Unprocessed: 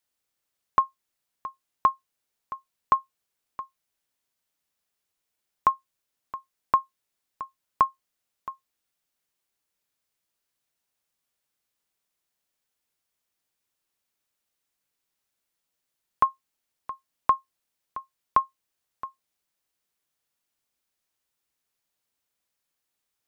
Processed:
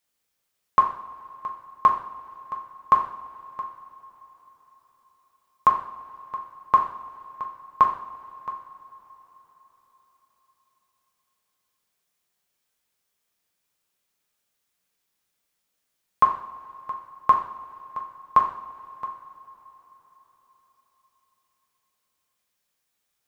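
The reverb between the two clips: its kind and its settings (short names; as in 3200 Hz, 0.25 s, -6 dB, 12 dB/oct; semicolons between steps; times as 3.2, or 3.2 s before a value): two-slope reverb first 0.54 s, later 4.7 s, from -21 dB, DRR 0 dB; gain +1.5 dB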